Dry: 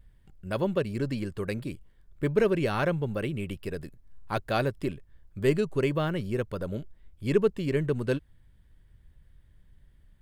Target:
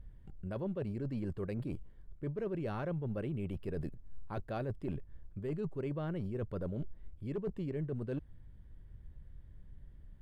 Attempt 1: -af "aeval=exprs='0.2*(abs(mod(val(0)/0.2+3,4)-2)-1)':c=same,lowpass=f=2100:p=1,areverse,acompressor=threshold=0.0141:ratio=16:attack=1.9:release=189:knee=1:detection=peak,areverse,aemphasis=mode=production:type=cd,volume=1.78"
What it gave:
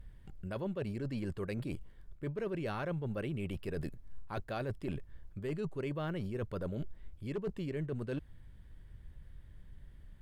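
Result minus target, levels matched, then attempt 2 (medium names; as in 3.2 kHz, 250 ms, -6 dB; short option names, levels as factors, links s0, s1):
2 kHz band +5.5 dB
-af "aeval=exprs='0.2*(abs(mod(val(0)/0.2+3,4)-2)-1)':c=same,lowpass=f=620:p=1,areverse,acompressor=threshold=0.0141:ratio=16:attack=1.9:release=189:knee=1:detection=peak,areverse,aemphasis=mode=production:type=cd,volume=1.78"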